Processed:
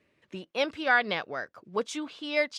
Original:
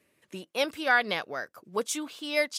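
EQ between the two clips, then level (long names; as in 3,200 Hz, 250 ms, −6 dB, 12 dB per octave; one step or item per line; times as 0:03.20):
low-pass filter 4,400 Hz 12 dB per octave
low-shelf EQ 76 Hz +8.5 dB
0.0 dB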